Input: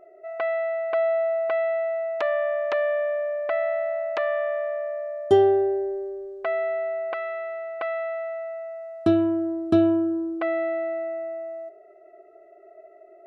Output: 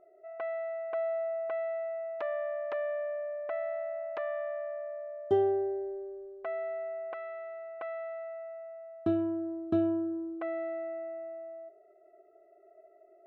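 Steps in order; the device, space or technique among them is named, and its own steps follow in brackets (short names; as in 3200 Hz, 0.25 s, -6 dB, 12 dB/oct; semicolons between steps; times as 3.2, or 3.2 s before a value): through cloth (high shelf 3600 Hz -16.5 dB); gain -9 dB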